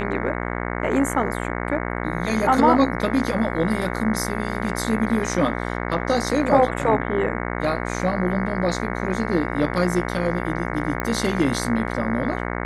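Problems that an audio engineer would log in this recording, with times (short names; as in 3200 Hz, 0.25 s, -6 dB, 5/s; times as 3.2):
buzz 60 Hz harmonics 37 -27 dBFS
11 pop -11 dBFS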